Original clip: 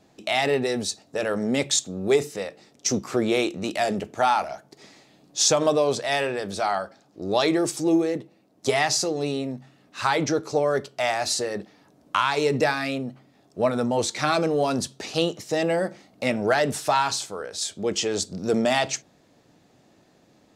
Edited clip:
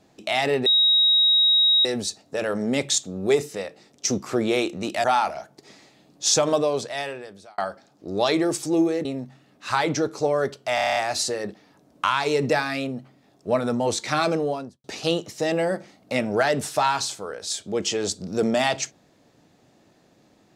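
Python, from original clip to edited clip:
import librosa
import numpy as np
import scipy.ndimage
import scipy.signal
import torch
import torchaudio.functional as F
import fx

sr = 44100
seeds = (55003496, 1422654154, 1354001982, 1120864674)

y = fx.studio_fade_out(x, sr, start_s=14.41, length_s=0.54)
y = fx.edit(y, sr, fx.insert_tone(at_s=0.66, length_s=1.19, hz=3800.0, db=-14.5),
    fx.cut(start_s=3.85, length_s=0.33),
    fx.fade_out_span(start_s=5.63, length_s=1.09),
    fx.cut(start_s=8.19, length_s=1.18),
    fx.stutter(start_s=11.07, slice_s=0.03, count=8), tone=tone)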